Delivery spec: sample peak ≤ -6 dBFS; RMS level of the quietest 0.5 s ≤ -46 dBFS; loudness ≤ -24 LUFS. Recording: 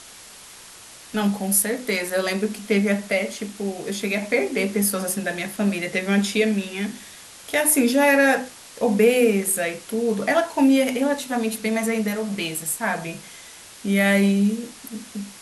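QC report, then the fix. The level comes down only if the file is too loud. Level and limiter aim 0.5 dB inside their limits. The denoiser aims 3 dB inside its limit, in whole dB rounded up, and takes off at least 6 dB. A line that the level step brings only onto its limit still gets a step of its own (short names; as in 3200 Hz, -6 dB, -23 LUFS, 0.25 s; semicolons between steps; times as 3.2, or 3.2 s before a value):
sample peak -4.0 dBFS: fail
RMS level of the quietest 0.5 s -44 dBFS: fail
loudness -21.5 LUFS: fail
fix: gain -3 dB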